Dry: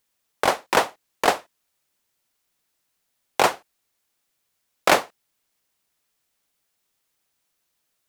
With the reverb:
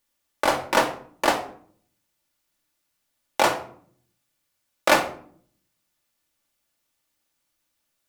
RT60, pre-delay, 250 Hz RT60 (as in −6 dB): 0.55 s, 3 ms, 0.85 s